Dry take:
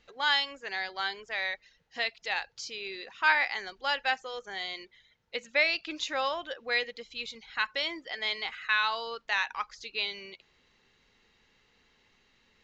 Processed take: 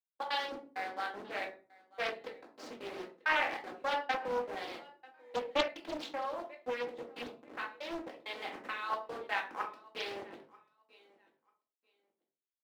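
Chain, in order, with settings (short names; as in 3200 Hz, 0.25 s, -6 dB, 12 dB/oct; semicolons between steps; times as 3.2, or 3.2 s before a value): level-crossing sampler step -35.5 dBFS; gate -44 dBFS, range -28 dB; HPF 340 Hz 24 dB/oct; tilt -4.5 dB/oct; 6.07–8.9 compressor 10:1, threshold -33 dBFS, peak gain reduction 8.5 dB; step gate "xxx.xxxx..x" 198 bpm -60 dB; feedback echo 0.94 s, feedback 19%, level -23 dB; shoebox room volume 240 m³, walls furnished, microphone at 2.1 m; Doppler distortion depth 0.89 ms; gain -5 dB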